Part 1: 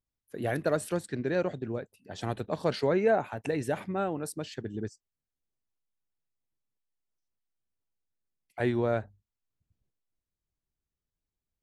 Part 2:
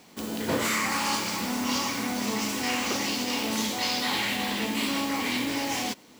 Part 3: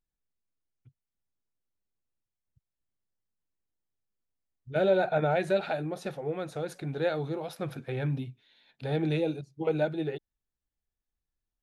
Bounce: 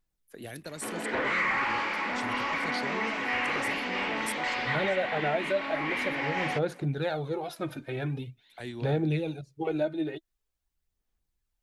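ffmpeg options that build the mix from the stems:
-filter_complex "[0:a]equalizer=f=100:w=0.38:g=-14,acrossover=split=250|3000[s0][s1][s2];[s1]acompressor=threshold=0.00355:ratio=4[s3];[s0][s3][s2]amix=inputs=3:normalize=0,volume=1.33[s4];[1:a]highpass=360,asoftclip=type=hard:threshold=0.0376,lowpass=f=2000:t=q:w=2.1,adelay=650,volume=1.12[s5];[2:a]aphaser=in_gain=1:out_gain=1:delay=3.3:decay=0.57:speed=0.45:type=sinusoidal,volume=1.06[s6];[s4][s5][s6]amix=inputs=3:normalize=0,alimiter=limit=0.119:level=0:latency=1:release=488"

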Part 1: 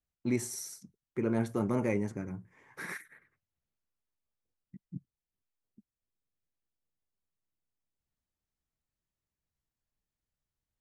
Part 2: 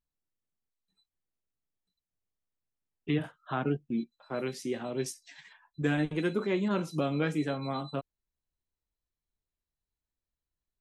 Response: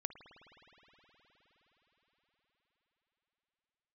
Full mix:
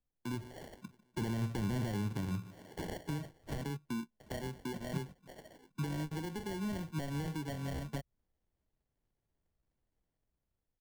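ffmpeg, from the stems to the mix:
-filter_complex "[0:a]dynaudnorm=f=260:g=5:m=3.98,alimiter=limit=0.178:level=0:latency=1:release=22,volume=0.562,asplit=2[s0][s1];[s1]volume=0.075[s2];[1:a]highshelf=f=8400:g=-7.5,alimiter=level_in=1.19:limit=0.0631:level=0:latency=1:release=210,volume=0.841,volume=1.26[s3];[s2]aecho=0:1:149|298|447|596|745|894|1043|1192:1|0.53|0.281|0.149|0.0789|0.0418|0.0222|0.0117[s4];[s0][s3][s4]amix=inputs=3:normalize=0,adynamicsmooth=sensitivity=4.5:basefreq=3700,acrusher=samples=35:mix=1:aa=0.000001,acrossover=split=170[s5][s6];[s6]acompressor=threshold=0.00794:ratio=3[s7];[s5][s7]amix=inputs=2:normalize=0"

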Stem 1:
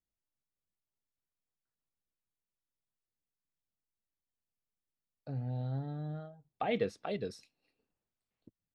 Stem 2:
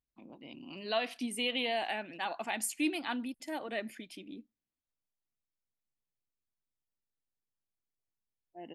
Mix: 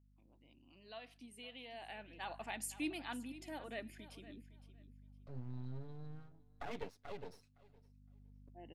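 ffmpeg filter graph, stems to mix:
-filter_complex "[0:a]lowpass=7600,aecho=1:1:7.1:0.97,aeval=exprs='max(val(0),0)':c=same,volume=0.335,asplit=3[s0][s1][s2];[s1]volume=0.0841[s3];[1:a]aeval=exprs='val(0)+0.00355*(sin(2*PI*50*n/s)+sin(2*PI*2*50*n/s)/2+sin(2*PI*3*50*n/s)/3+sin(2*PI*4*50*n/s)/4+sin(2*PI*5*50*n/s)/5)':c=same,volume=0.376,afade=t=in:st=1.71:d=0.59:silence=0.298538,asplit=2[s4][s5];[s5]volume=0.168[s6];[s2]apad=whole_len=385570[s7];[s4][s7]sidechaincompress=threshold=0.00141:ratio=8:attack=46:release=946[s8];[s3][s6]amix=inputs=2:normalize=0,aecho=0:1:512|1024|1536:1|0.19|0.0361[s9];[s0][s8][s9]amix=inputs=3:normalize=0"

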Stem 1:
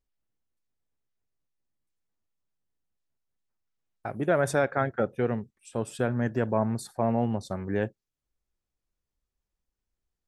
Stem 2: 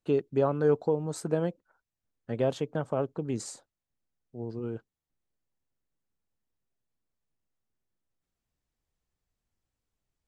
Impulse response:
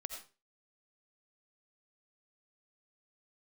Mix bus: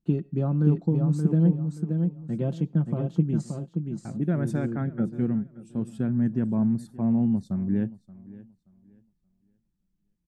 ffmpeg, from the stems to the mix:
-filter_complex "[0:a]volume=1.06,asplit=2[s0][s1];[s1]volume=0.106[s2];[1:a]aecho=1:1:5.8:0.55,volume=1.26,asplit=3[s3][s4][s5];[s4]volume=0.133[s6];[s5]volume=0.596[s7];[2:a]atrim=start_sample=2205[s8];[s6][s8]afir=irnorm=-1:irlink=0[s9];[s2][s7]amix=inputs=2:normalize=0,aecho=0:1:577|1154|1731|2308:1|0.24|0.0576|0.0138[s10];[s0][s3][s9][s10]amix=inputs=4:normalize=0,firequalizer=gain_entry='entry(110,0);entry(180,10);entry(480,-13)':delay=0.05:min_phase=1"

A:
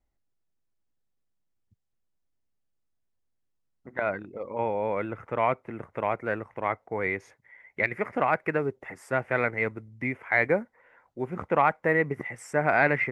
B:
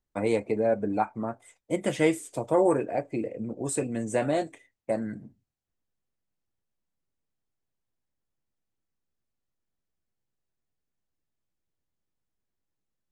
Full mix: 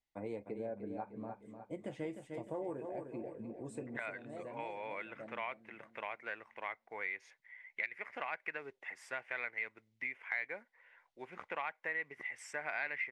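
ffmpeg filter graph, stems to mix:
-filter_complex "[0:a]bandpass=f=3200:t=q:w=1.1:csg=0,volume=1.19,asplit=2[s0][s1];[1:a]lowpass=f=1800:p=1,volume=0.224,asplit=2[s2][s3];[s3]volume=0.355[s4];[s1]apad=whole_len=578539[s5];[s2][s5]sidechaincompress=threshold=0.00224:ratio=8:attack=16:release=296[s6];[s4]aecho=0:1:303|606|909|1212|1515|1818:1|0.43|0.185|0.0795|0.0342|0.0147[s7];[s0][s6][s7]amix=inputs=3:normalize=0,equalizer=f=1300:w=8:g=-7,acompressor=threshold=0.0112:ratio=2.5"

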